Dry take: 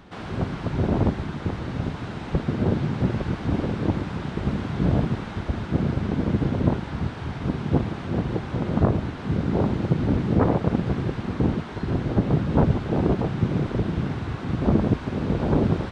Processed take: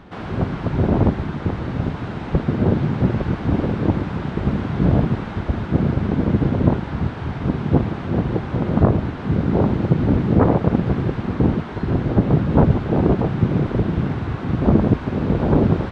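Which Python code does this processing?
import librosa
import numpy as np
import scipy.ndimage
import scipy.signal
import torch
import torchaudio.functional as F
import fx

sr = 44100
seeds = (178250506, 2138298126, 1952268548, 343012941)

y = fx.high_shelf(x, sr, hz=4100.0, db=-11.0)
y = F.gain(torch.from_numpy(y), 5.0).numpy()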